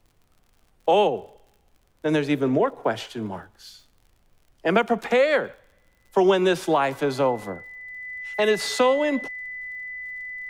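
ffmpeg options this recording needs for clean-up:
-af "adeclick=t=4,bandreject=f=2k:w=30,agate=range=-21dB:threshold=-54dB"

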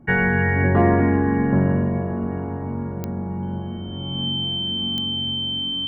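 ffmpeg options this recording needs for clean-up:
-af "adeclick=t=4,bandreject=f=3.1k:w=30"

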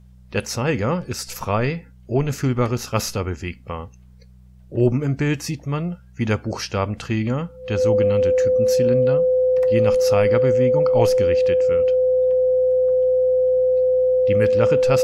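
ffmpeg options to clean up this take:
-af "bandreject=f=62.2:t=h:w=4,bandreject=f=124.4:t=h:w=4,bandreject=f=186.6:t=h:w=4,bandreject=f=510:w=30"

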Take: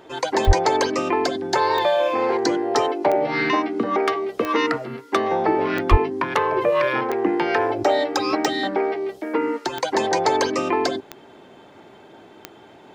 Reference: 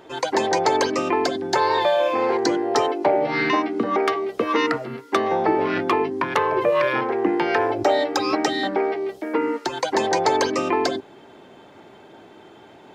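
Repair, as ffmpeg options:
-filter_complex "[0:a]adeclick=t=4,asplit=3[a][b][c];[a]afade=t=out:st=0.46:d=0.02[d];[b]highpass=f=140:w=0.5412,highpass=f=140:w=1.3066,afade=t=in:st=0.46:d=0.02,afade=t=out:st=0.58:d=0.02[e];[c]afade=t=in:st=0.58:d=0.02[f];[d][e][f]amix=inputs=3:normalize=0,asplit=3[g][h][i];[g]afade=t=out:st=5.9:d=0.02[j];[h]highpass=f=140:w=0.5412,highpass=f=140:w=1.3066,afade=t=in:st=5.9:d=0.02,afade=t=out:st=6.02:d=0.02[k];[i]afade=t=in:st=6.02:d=0.02[l];[j][k][l]amix=inputs=3:normalize=0"

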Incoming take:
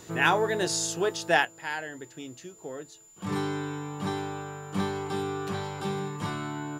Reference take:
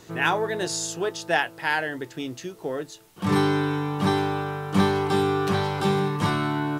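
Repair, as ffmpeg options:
-af "bandreject=f=7.1k:w=30,asetnsamples=n=441:p=0,asendcmd='1.45 volume volume 9dB',volume=0dB"

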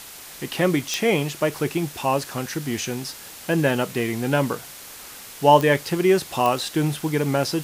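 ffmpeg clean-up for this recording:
-af "adeclick=t=4,afftdn=nr=27:nf=-41"

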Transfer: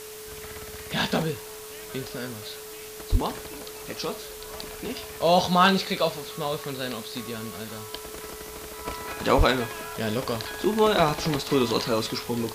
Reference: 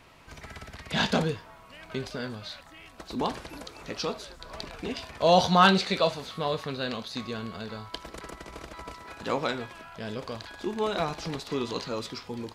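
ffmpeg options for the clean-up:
-filter_complex "[0:a]bandreject=f=430:w=30,asplit=3[a][b][c];[a]afade=t=out:st=3.11:d=0.02[d];[b]highpass=f=140:w=0.5412,highpass=f=140:w=1.3066,afade=t=in:st=3.11:d=0.02,afade=t=out:st=3.23:d=0.02[e];[c]afade=t=in:st=3.23:d=0.02[f];[d][e][f]amix=inputs=3:normalize=0,asplit=3[g][h][i];[g]afade=t=out:st=9.37:d=0.02[j];[h]highpass=f=140:w=0.5412,highpass=f=140:w=1.3066,afade=t=in:st=9.37:d=0.02,afade=t=out:st=9.49:d=0.02[k];[i]afade=t=in:st=9.49:d=0.02[l];[j][k][l]amix=inputs=3:normalize=0,afwtdn=0.0079,asetnsamples=n=441:p=0,asendcmd='8.85 volume volume -8dB',volume=0dB"

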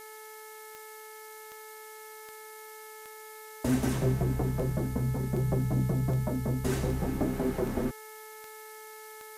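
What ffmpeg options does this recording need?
-af "adeclick=t=4,bandreject=f=433.6:t=h:w=4,bandreject=f=867.2:t=h:w=4,bandreject=f=1.3008k:t=h:w=4,bandreject=f=1.7344k:t=h:w=4,bandreject=f=2.168k:t=h:w=4,afftdn=nr=30:nf=-47"

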